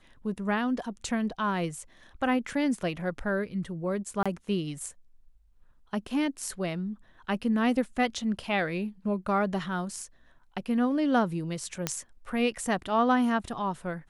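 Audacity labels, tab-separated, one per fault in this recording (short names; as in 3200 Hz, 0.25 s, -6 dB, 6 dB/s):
4.230000	4.260000	gap 26 ms
11.870000	11.870000	pop -11 dBFS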